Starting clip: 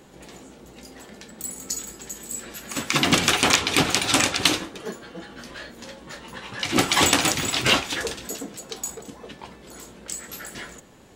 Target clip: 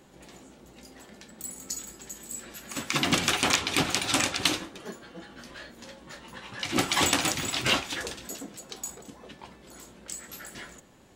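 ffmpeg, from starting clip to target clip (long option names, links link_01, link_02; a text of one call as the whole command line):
ffmpeg -i in.wav -af "bandreject=frequency=450:width=12,volume=-5.5dB" out.wav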